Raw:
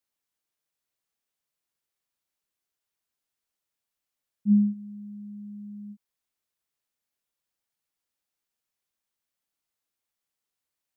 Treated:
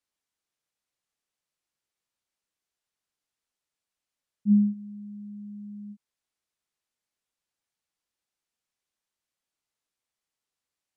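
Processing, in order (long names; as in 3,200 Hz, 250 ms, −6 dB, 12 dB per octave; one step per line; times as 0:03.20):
low-pass filter 9,800 Hz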